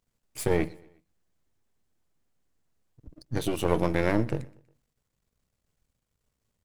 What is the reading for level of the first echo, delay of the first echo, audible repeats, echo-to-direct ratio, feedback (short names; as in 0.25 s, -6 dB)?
-23.5 dB, 0.12 s, 2, -22.5 dB, 47%